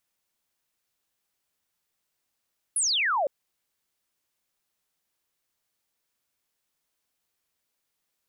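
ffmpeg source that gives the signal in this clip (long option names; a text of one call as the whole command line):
ffmpeg -f lavfi -i "aevalsrc='0.0794*clip(t/0.002,0,1)*clip((0.51-t)/0.002,0,1)*sin(2*PI*11000*0.51/log(520/11000)*(exp(log(520/11000)*t/0.51)-1))':duration=0.51:sample_rate=44100" out.wav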